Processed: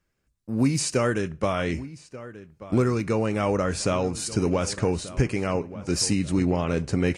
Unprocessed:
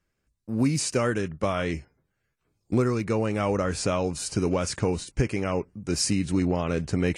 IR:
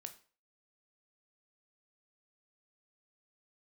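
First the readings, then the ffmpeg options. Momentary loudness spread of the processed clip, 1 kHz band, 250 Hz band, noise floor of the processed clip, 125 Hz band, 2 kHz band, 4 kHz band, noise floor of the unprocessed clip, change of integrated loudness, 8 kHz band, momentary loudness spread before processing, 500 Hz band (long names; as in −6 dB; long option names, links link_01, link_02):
10 LU, +1.5 dB, +1.5 dB, −75 dBFS, +1.5 dB, +1.5 dB, +1.5 dB, −78 dBFS, +1.5 dB, +1.5 dB, 5 LU, +1.5 dB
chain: -filter_complex "[0:a]asplit=2[link_01][link_02];[link_02]adelay=1185,lowpass=frequency=2900:poles=1,volume=-16dB,asplit=2[link_03][link_04];[link_04]adelay=1185,lowpass=frequency=2900:poles=1,volume=0.4,asplit=2[link_05][link_06];[link_06]adelay=1185,lowpass=frequency=2900:poles=1,volume=0.4,asplit=2[link_07][link_08];[link_08]adelay=1185,lowpass=frequency=2900:poles=1,volume=0.4[link_09];[link_01][link_03][link_05][link_07][link_09]amix=inputs=5:normalize=0,asplit=2[link_10][link_11];[1:a]atrim=start_sample=2205[link_12];[link_11][link_12]afir=irnorm=-1:irlink=0,volume=-3dB[link_13];[link_10][link_13]amix=inputs=2:normalize=0,volume=-1.5dB"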